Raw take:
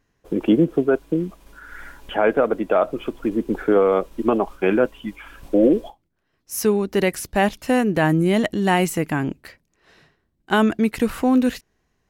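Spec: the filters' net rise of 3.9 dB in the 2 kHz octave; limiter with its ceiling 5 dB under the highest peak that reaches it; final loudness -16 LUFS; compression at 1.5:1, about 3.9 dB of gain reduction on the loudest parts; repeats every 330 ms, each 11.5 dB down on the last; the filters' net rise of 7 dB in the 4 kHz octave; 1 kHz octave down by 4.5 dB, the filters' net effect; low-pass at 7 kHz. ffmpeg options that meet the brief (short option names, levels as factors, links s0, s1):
-af "lowpass=7000,equalizer=f=1000:t=o:g=-8.5,equalizer=f=2000:t=o:g=6,equalizer=f=4000:t=o:g=8.5,acompressor=threshold=0.0708:ratio=1.5,alimiter=limit=0.224:level=0:latency=1,aecho=1:1:330|660|990:0.266|0.0718|0.0194,volume=2.82"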